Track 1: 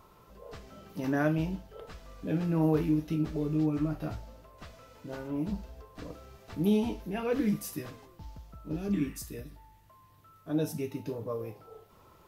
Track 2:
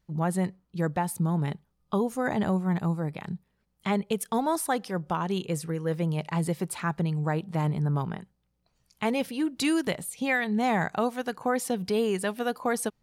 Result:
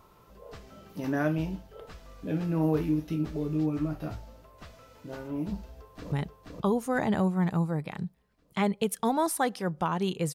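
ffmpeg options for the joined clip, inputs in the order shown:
-filter_complex "[0:a]apad=whole_dur=10.34,atrim=end=10.34,atrim=end=6.122[a];[1:a]atrim=start=1.408:end=5.63[b];[a][b]acrossfade=d=0.004:c1=hsin:c2=hsin,asplit=2[c][d];[d]afade=t=in:st=5.58:d=0.01,afade=t=out:st=6.12:d=0.01,aecho=0:1:480|960|1440|1920|2400|2880|3360:0.749894|0.374947|0.187474|0.0937368|0.0468684|0.0234342|0.0117171[e];[c][e]amix=inputs=2:normalize=0"

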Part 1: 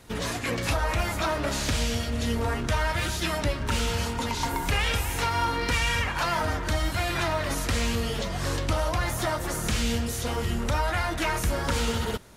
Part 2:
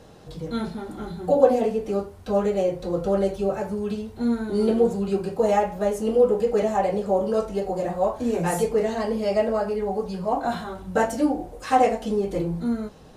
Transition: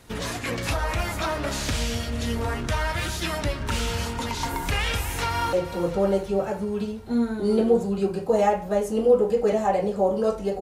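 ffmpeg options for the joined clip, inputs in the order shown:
-filter_complex "[0:a]apad=whole_dur=10.61,atrim=end=10.61,atrim=end=5.532[a];[1:a]atrim=start=2.628:end=7.71[b];[a][b]acrossfade=d=0.004:c1=hsin:c2=hsin,asplit=2[c][d];[d]afade=t=in:st=4.94:d=0.01,afade=t=out:st=5.53:d=0.01,aecho=0:1:350|700|1050|1400|1750|2100:0.251189|0.138154|0.0759846|0.0417915|0.0229853|0.0126419[e];[c][e]amix=inputs=2:normalize=0"

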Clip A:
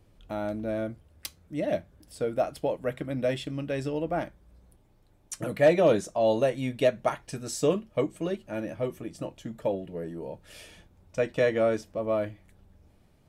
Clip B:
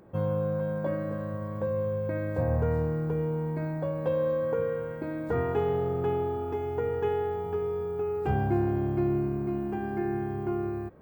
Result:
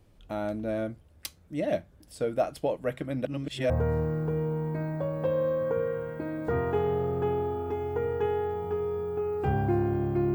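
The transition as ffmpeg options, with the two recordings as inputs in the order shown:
-filter_complex "[0:a]apad=whole_dur=10.34,atrim=end=10.34,asplit=2[a][b];[a]atrim=end=3.252[c];[b]atrim=start=3.248:end=3.702,asetpts=PTS-STARTPTS,areverse[d];[1:a]atrim=start=2.518:end=9.16[e];[c][d]acrossfade=d=0.004:c1=hsin:c2=hsin[f];[f][e]acrossfade=d=0.004:c1=hsin:c2=hsin"

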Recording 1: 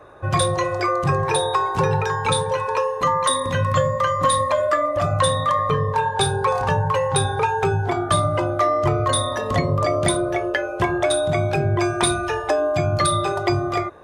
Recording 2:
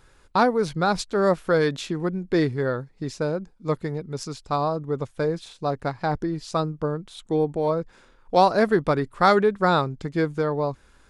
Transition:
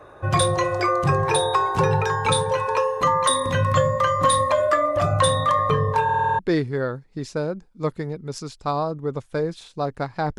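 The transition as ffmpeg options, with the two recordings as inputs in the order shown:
-filter_complex "[0:a]apad=whole_dur=10.38,atrim=end=10.38,asplit=7[a][b][c][d][e][f][g];[a]atrim=end=6.092[h];[b]atrim=start=6.038:end=6.092[i];[c]atrim=start=6.038:end=6.092[j];[d]atrim=start=6.038:end=6.092[k];[e]atrim=start=6.038:end=6.092[l];[f]atrim=start=6.038:end=6.092[m];[g]atrim=start=6.038:end=6.092[n];[1:a]atrim=start=2.238:end=6.23[o];[h][i]acrossfade=d=0.004:c1=hsin:c2=hsin[p];[p][j]acrossfade=d=0.004:c1=hsin:c2=hsin[q];[q][k]acrossfade=d=0.004:c1=hsin:c2=hsin[r];[r][l]acrossfade=d=0.004:c1=hsin:c2=hsin[s];[s][m]acrossfade=d=0.004:c1=hsin:c2=hsin[t];[t][n]acrossfade=d=0.004:c1=hsin:c2=hsin[u];[u][o]acrossfade=d=0.004:c1=hsin:c2=hsin"

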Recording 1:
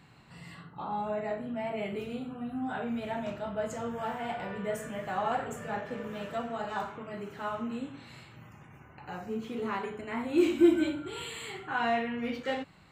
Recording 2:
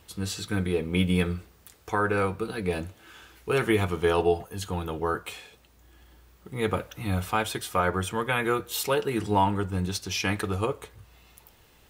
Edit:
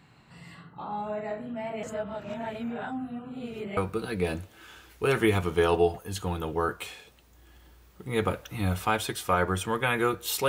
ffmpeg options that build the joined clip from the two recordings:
-filter_complex "[0:a]apad=whole_dur=10.48,atrim=end=10.48,asplit=2[a][b];[a]atrim=end=1.832[c];[b]atrim=start=1.828:end=3.772,asetpts=PTS-STARTPTS,areverse[d];[1:a]atrim=start=2.228:end=8.94[e];[c][d]acrossfade=d=0.004:c1=hsin:c2=hsin[f];[f][e]acrossfade=d=0.004:c1=hsin:c2=hsin"

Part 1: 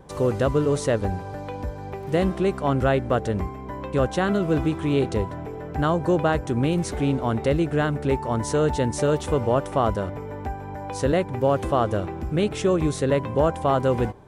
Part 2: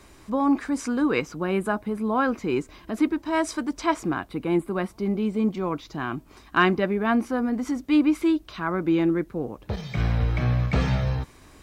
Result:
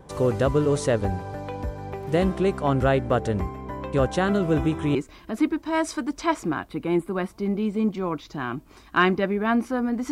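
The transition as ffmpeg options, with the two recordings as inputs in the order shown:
-filter_complex "[0:a]asettb=1/sr,asplit=3[a][b][c];[a]atrim=end=4.504[d];[b]atrim=start=4.5:end=4.95,asetpts=PTS-STARTPTS,afade=t=in:d=0.004:c=qsin,afade=t=out:st=0.446:d=0.004:c=qsin,asuperstop=centerf=4500:order=4:qfactor=5.3[e];[c]atrim=start=4.946[f];[d][e]acrossfade=d=0.004:c1=hsin:c2=qsin[g];[g][f]acrossfade=d=0.004:c1=qsin:c2=hsin,apad=whole_dur=10.11,atrim=end=10.11,atrim=end=4.952[h];[1:a]atrim=start=2.548:end=7.71[i];[h][i]acrossfade=d=0.004:c1=hsin:c2=hsin"

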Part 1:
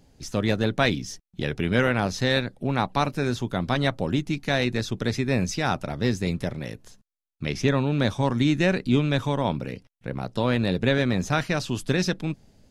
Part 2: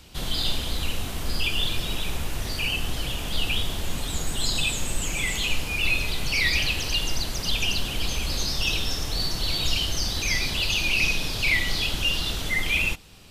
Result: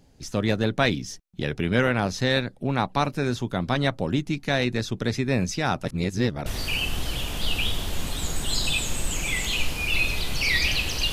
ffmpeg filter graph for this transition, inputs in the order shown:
-filter_complex "[0:a]apad=whole_dur=11.12,atrim=end=11.12,asplit=2[a][b];[a]atrim=end=5.852[c];[b]atrim=start=5.848:end=6.462,asetpts=PTS-STARTPTS,areverse[d];[1:a]atrim=start=2.368:end=7.03[e];[c][d]acrossfade=d=0.004:c1=hsin:c2=hsin[f];[f][e]acrossfade=d=0.004:c1=hsin:c2=hsin"

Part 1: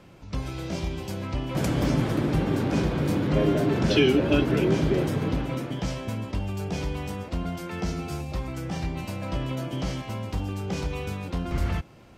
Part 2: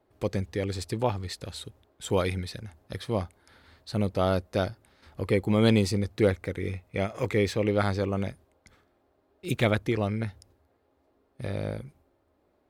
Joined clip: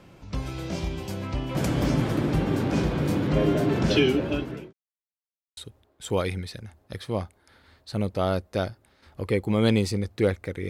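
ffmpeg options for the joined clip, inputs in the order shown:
-filter_complex "[0:a]apad=whole_dur=10.69,atrim=end=10.69,asplit=2[a][b];[a]atrim=end=4.73,asetpts=PTS-STARTPTS,afade=t=out:st=3.95:d=0.78[c];[b]atrim=start=4.73:end=5.57,asetpts=PTS-STARTPTS,volume=0[d];[1:a]atrim=start=1.57:end=6.69,asetpts=PTS-STARTPTS,afade=t=in:d=0.004:c=hsin[e];[c][d][e]concat=n=3:v=0:a=1"

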